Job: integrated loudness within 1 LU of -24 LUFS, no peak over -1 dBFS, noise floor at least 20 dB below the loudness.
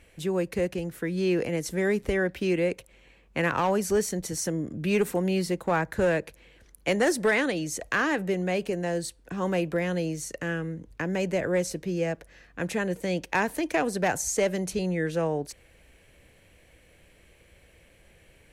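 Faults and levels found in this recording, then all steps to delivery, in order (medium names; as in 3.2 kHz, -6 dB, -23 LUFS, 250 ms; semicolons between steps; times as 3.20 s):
clipped samples 0.3%; clipping level -16.5 dBFS; loudness -28.0 LUFS; peak level -16.5 dBFS; loudness target -24.0 LUFS
-> clip repair -16.5 dBFS; trim +4 dB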